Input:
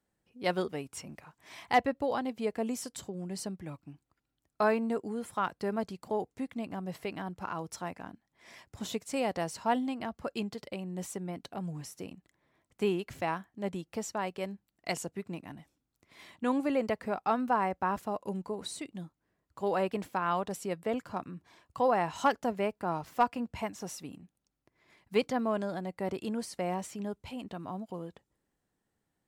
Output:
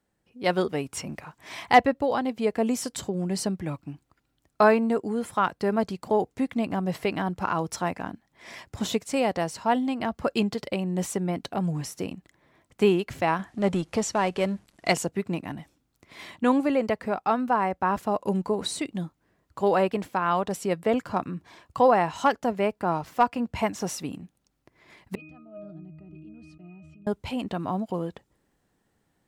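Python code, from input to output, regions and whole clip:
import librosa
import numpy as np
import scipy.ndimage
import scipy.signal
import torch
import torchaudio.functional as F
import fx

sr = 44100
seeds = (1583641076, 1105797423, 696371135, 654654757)

y = fx.chain(x, sr, fx.law_mismatch(coded='mu'),
    fx.lowpass(hz=11000.0, slope=24), at=(13.39, 14.93))
y = fx.chain(y, sr, fx.band_shelf(hz=840.0, db=-9.5, octaves=2.3),
    fx.octave_resonator(note='D#', decay_s=0.49),
    fx.sustainer(db_per_s=23.0), at=(25.15, 27.07))
y = fx.high_shelf(y, sr, hz=6700.0, db=-4.0)
y = fx.rider(y, sr, range_db=3, speed_s=0.5)
y = F.gain(torch.from_numpy(y), 7.5).numpy()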